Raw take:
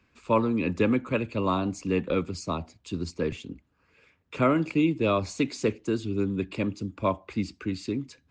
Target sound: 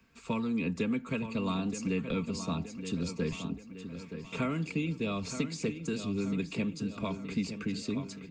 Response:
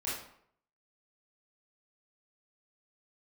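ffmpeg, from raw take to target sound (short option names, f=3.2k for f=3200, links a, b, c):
-filter_complex "[0:a]highshelf=f=7.4k:g=9.5,acrossover=split=280|1900[a][b][c];[a]acompressor=threshold=-35dB:ratio=4[d];[b]acompressor=threshold=-38dB:ratio=4[e];[c]acompressor=threshold=-40dB:ratio=4[f];[d][e][f]amix=inputs=3:normalize=0,equalizer=f=150:t=o:w=0.72:g=7,aecho=1:1:4.4:0.49,asplit=2[g][h];[h]adelay=923,lowpass=f=4.8k:p=1,volume=-9.5dB,asplit=2[i][j];[j]adelay=923,lowpass=f=4.8k:p=1,volume=0.54,asplit=2[k][l];[l]adelay=923,lowpass=f=4.8k:p=1,volume=0.54,asplit=2[m][n];[n]adelay=923,lowpass=f=4.8k:p=1,volume=0.54,asplit=2[o][p];[p]adelay=923,lowpass=f=4.8k:p=1,volume=0.54,asplit=2[q][r];[r]adelay=923,lowpass=f=4.8k:p=1,volume=0.54[s];[i][k][m][o][q][s]amix=inputs=6:normalize=0[t];[g][t]amix=inputs=2:normalize=0,volume=-1.5dB"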